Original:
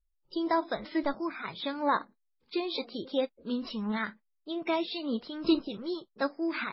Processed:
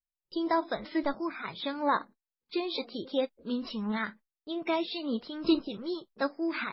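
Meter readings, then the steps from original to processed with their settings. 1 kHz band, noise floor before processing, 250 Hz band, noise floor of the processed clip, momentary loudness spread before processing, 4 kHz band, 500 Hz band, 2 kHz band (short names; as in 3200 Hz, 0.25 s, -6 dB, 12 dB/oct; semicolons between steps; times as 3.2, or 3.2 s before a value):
0.0 dB, -77 dBFS, 0.0 dB, under -85 dBFS, 8 LU, 0.0 dB, 0.0 dB, 0.0 dB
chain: gate with hold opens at -50 dBFS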